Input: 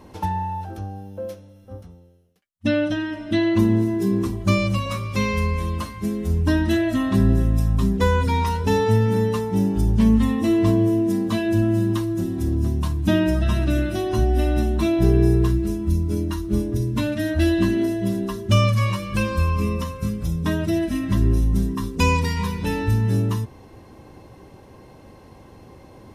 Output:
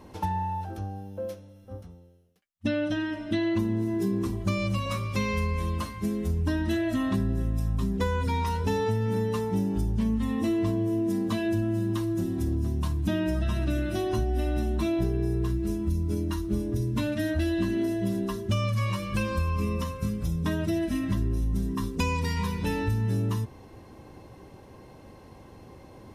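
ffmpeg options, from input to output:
-af "acompressor=threshold=0.1:ratio=6,volume=0.708"

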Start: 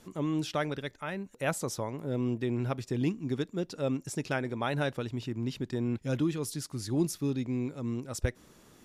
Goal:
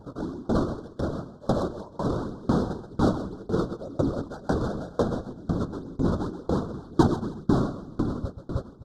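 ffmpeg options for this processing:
-filter_complex "[0:a]acrusher=samples=31:mix=1:aa=0.000001:lfo=1:lforange=49.6:lforate=2,acrossover=split=9700[s0][s1];[s1]acompressor=threshold=0.00158:ratio=4:attack=1:release=60[s2];[s0][s2]amix=inputs=2:normalize=0,flanger=delay=7.1:depth=6.7:regen=-73:speed=0.25:shape=sinusoidal,afftfilt=real='hypot(re,im)*cos(2*PI*random(0))':imag='hypot(re,im)*sin(2*PI*random(1))':win_size=512:overlap=0.75,asoftclip=type=tanh:threshold=0.0355,adynamicsmooth=sensitivity=4:basefreq=2100,asuperstop=centerf=2300:order=8:qfactor=1.1,aemphasis=mode=production:type=50kf,asplit=2[s3][s4];[s4]aecho=0:1:130|312|566.8|923.5|1423:0.631|0.398|0.251|0.158|0.1[s5];[s3][s5]amix=inputs=2:normalize=0,alimiter=level_in=25.1:limit=0.891:release=50:level=0:latency=1,aeval=exprs='val(0)*pow(10,-27*if(lt(mod(2*n/s,1),2*abs(2)/1000),1-mod(2*n/s,1)/(2*abs(2)/1000),(mod(2*n/s,1)-2*abs(2)/1000)/(1-2*abs(2)/1000))/20)':c=same,volume=0.531"

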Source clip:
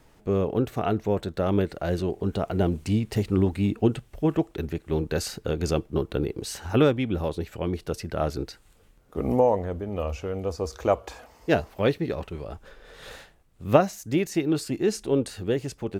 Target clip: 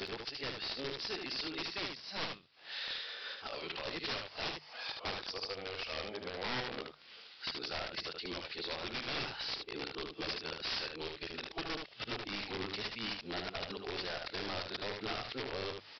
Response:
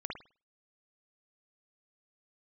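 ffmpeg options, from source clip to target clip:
-filter_complex "[0:a]areverse,aderivative,aeval=exprs='(tanh(35.5*val(0)+0.3)-tanh(0.3))/35.5':c=same,highshelf=f=2900:g=4.5,acompressor=threshold=0.00141:ratio=2,highpass=110,acompressor=mode=upward:threshold=0.00178:ratio=2.5,aresample=11025,aeval=exprs='(mod(266*val(0)+1,2)-1)/266':c=same,aresample=44100,bandreject=f=50:t=h:w=6,bandreject=f=100:t=h:w=6,bandreject=f=150:t=h:w=6,asplit=2[s0][s1];[s1]aecho=0:1:75:0.562[s2];[s0][s2]amix=inputs=2:normalize=0,volume=7.08"

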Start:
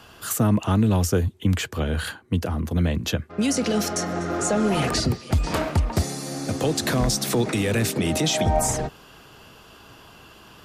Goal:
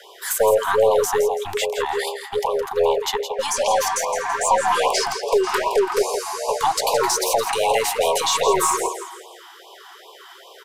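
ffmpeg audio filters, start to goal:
-filter_complex "[0:a]equalizer=f=670:w=1.4:g=6,afreqshift=330,aecho=1:1:166|332|498|664:0.355|0.135|0.0512|0.0195,asplit=2[s0][s1];[s1]aeval=exprs='clip(val(0),-1,0.0631)':c=same,volume=0.447[s2];[s0][s2]amix=inputs=2:normalize=0,afftfilt=real='re*(1-between(b*sr/1024,470*pow(1700/470,0.5+0.5*sin(2*PI*2.5*pts/sr))/1.41,470*pow(1700/470,0.5+0.5*sin(2*PI*2.5*pts/sr))*1.41))':imag='im*(1-between(b*sr/1024,470*pow(1700/470,0.5+0.5*sin(2*PI*2.5*pts/sr))/1.41,470*pow(1700/470,0.5+0.5*sin(2*PI*2.5*pts/sr))*1.41))':win_size=1024:overlap=0.75"

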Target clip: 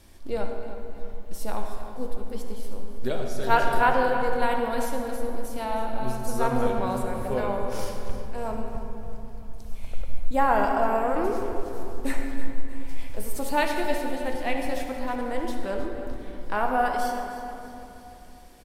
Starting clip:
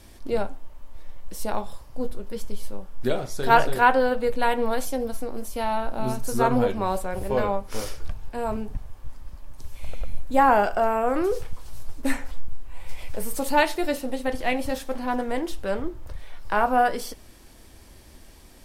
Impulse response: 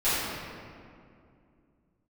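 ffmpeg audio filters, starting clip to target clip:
-filter_complex "[0:a]aecho=1:1:314|628|942|1256|1570:0.2|0.0958|0.046|0.0221|0.0106,asplit=2[s0][s1];[1:a]atrim=start_sample=2205,asetrate=37485,aresample=44100,adelay=54[s2];[s1][s2]afir=irnorm=-1:irlink=0,volume=0.112[s3];[s0][s3]amix=inputs=2:normalize=0,volume=0.596"

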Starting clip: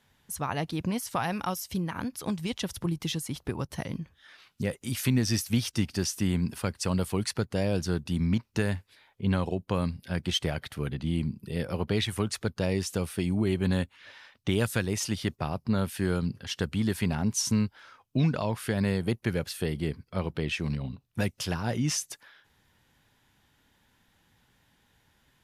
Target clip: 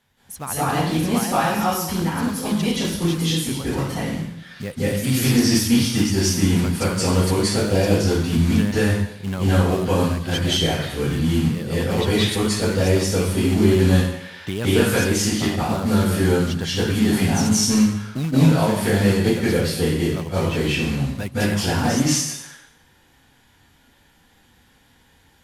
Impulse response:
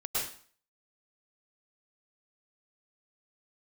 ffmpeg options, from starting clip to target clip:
-filter_complex "[0:a]acontrast=70,acrusher=bits=4:mode=log:mix=0:aa=0.000001[s0];[1:a]atrim=start_sample=2205,asetrate=26901,aresample=44100[s1];[s0][s1]afir=irnorm=-1:irlink=0,volume=0.501"

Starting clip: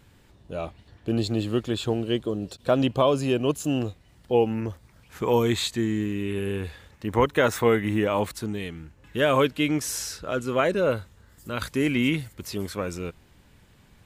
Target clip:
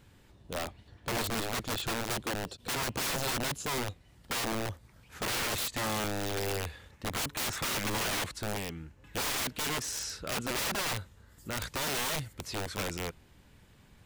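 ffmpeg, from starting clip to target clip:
-filter_complex "[0:a]acrossover=split=8900[s0][s1];[s1]acompressor=threshold=0.00158:ratio=4:attack=1:release=60[s2];[s0][s2]amix=inputs=2:normalize=0,aeval=exprs='(mod(16.8*val(0)+1,2)-1)/16.8':c=same,volume=0.708"

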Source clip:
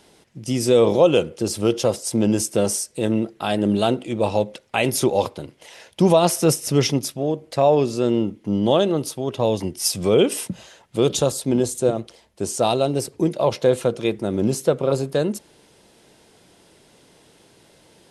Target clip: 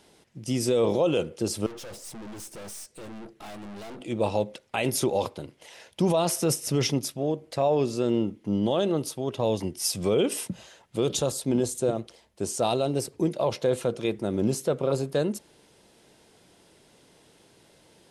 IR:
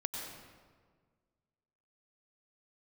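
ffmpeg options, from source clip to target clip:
-filter_complex "[0:a]alimiter=limit=0.316:level=0:latency=1:release=21,asettb=1/sr,asplit=3[s0][s1][s2];[s0]atrim=end=1.664[s3];[s1]atrim=start=1.66:end=4.01,asetpts=PTS-STARTPTS,afade=t=in:d=0.004:c=qsin,afade=t=out:st=2.346:d=0.004:c=qsin,aeval=exprs='(tanh(56.2*val(0)+0.45)-tanh(0.45))/56.2':c=same[s4];[s2]atrim=start=4.006[s5];[s3][s4]acrossfade=d=0.004:c1=hsin:c2=qsin[s6];[s6][s5]acrossfade=d=0.004:c1=qsin:c2=hsin,volume=0.596"

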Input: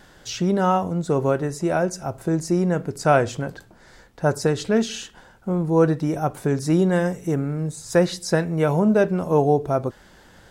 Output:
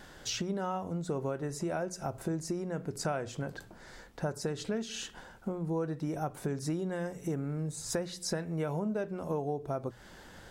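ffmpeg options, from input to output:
-af "acompressor=threshold=0.0316:ratio=6,bandreject=f=60:t=h:w=6,bandreject=f=120:t=h:w=6,bandreject=f=180:t=h:w=6,volume=0.841"

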